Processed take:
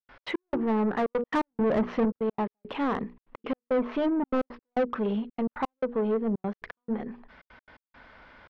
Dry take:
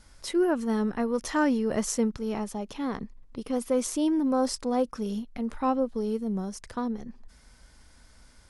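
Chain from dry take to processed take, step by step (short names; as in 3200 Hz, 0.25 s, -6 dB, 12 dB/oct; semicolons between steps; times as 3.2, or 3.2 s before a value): LPF 3200 Hz 24 dB/oct; notches 60/120/180/240/300/360/420/480 Hz; treble ducked by the level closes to 850 Hz, closed at -22 dBFS; 1.3–2.05 bell 110 Hz +9 dB 2.4 oct; 3.66–4.43 comb 4.6 ms, depth 52%; overdrive pedal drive 25 dB, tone 1600 Hz, clips at -12.5 dBFS; step gate ".x.x..xxxxxx" 170 bpm -60 dB; gain -4 dB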